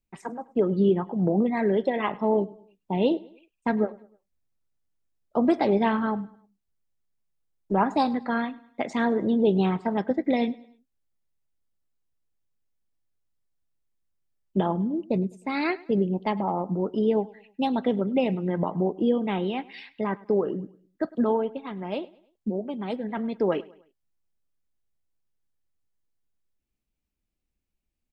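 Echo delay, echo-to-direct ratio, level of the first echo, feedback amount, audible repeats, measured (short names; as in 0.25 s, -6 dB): 0.103 s, -21.0 dB, -22.0 dB, 43%, 2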